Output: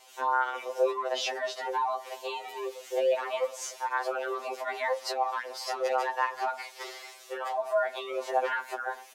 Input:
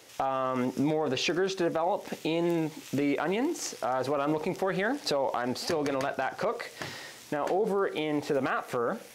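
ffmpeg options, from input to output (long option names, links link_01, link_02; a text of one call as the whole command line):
ffmpeg -i in.wav -filter_complex "[0:a]afreqshift=240,asplit=2[link_01][link_02];[link_02]adelay=400,highpass=300,lowpass=3400,asoftclip=type=hard:threshold=-24.5dB,volume=-23dB[link_03];[link_01][link_03]amix=inputs=2:normalize=0,afftfilt=real='re*2.45*eq(mod(b,6),0)':imag='im*2.45*eq(mod(b,6),0)':win_size=2048:overlap=0.75" out.wav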